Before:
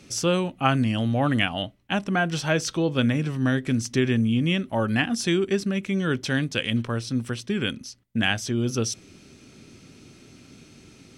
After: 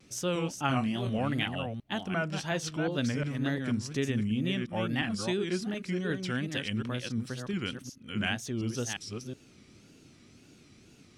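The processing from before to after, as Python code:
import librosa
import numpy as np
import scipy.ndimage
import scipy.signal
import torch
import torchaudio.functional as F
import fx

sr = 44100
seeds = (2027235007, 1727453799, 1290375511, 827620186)

y = fx.reverse_delay(x, sr, ms=359, wet_db=-5.5)
y = fx.wow_flutter(y, sr, seeds[0], rate_hz=2.1, depth_cents=140.0)
y = fx.doubler(y, sr, ms=23.0, db=-5, at=(0.67, 1.19))
y = F.gain(torch.from_numpy(y), -8.5).numpy()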